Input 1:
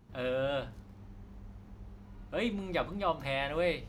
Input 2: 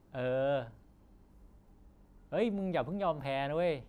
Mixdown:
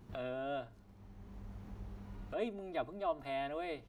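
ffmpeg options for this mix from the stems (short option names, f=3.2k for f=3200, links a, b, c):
-filter_complex "[0:a]alimiter=level_in=1.5dB:limit=-24dB:level=0:latency=1,volume=-1.5dB,acompressor=threshold=-41dB:ratio=6,volume=2.5dB[a];[1:a]aecho=1:1:2.9:0.96,volume=-1,adelay=4.7,volume=-8dB,asplit=2[b][c];[c]apad=whole_len=171483[d];[a][d]sidechaincompress=threshold=-55dB:ratio=3:attack=16:release=721[e];[e][b]amix=inputs=2:normalize=0"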